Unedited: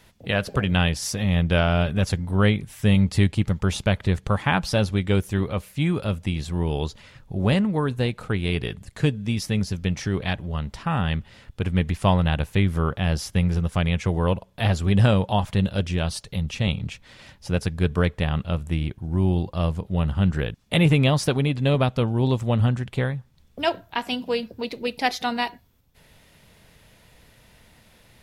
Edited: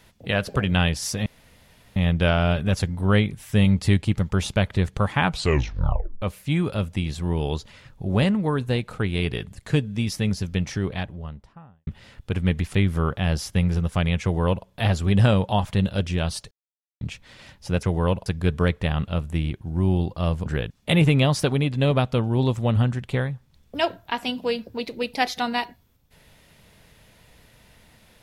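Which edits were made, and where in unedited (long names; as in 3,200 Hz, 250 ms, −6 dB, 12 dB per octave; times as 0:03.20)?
0:01.26: splice in room tone 0.70 s
0:04.55: tape stop 0.97 s
0:09.87–0:11.17: fade out and dull
0:12.04–0:12.54: remove
0:14.03–0:14.46: duplicate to 0:17.63
0:16.31–0:16.81: silence
0:19.83–0:20.30: remove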